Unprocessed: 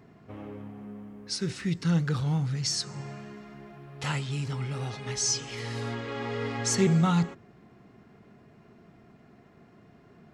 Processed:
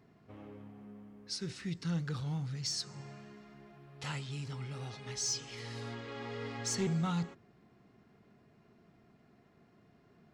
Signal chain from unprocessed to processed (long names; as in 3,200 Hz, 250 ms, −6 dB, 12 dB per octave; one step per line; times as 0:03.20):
parametric band 4,500 Hz +3.5 dB 1.1 octaves
soft clipping −14.5 dBFS, distortion −24 dB
level −9 dB